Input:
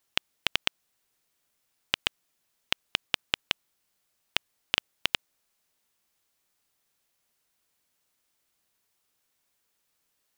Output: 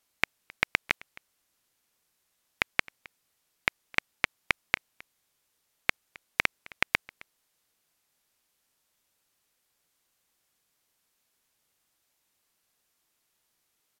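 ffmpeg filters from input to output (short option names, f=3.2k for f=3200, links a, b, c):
-filter_complex "[0:a]asplit=2[a][b];[b]aecho=0:1:196:0.0668[c];[a][c]amix=inputs=2:normalize=0,asetrate=32667,aresample=44100"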